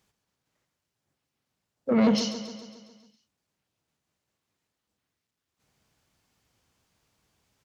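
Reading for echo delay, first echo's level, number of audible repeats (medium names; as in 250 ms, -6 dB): 137 ms, -11.0 dB, 6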